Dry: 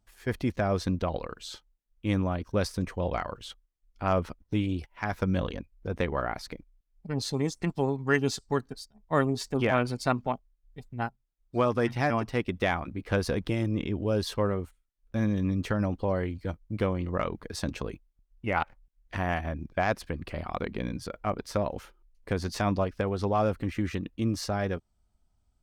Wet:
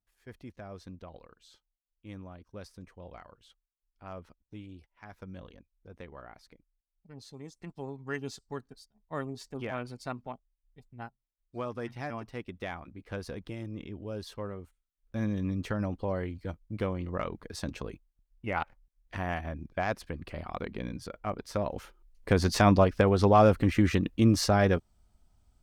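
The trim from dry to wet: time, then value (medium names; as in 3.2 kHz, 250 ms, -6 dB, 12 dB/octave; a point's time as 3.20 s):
7.37 s -17.5 dB
7.99 s -11 dB
14.59 s -11 dB
15.23 s -4 dB
21.47 s -4 dB
22.42 s +6 dB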